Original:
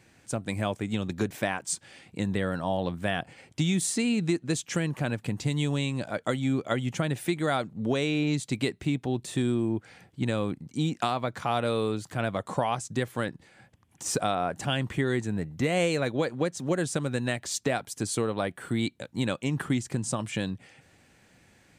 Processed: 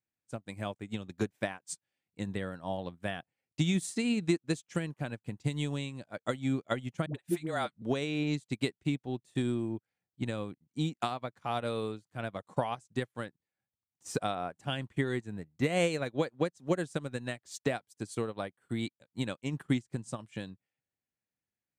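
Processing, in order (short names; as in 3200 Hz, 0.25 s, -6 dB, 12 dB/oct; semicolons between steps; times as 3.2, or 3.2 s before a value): 7.06–7.82 dispersion highs, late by 85 ms, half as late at 460 Hz; upward expander 2.5:1, over -47 dBFS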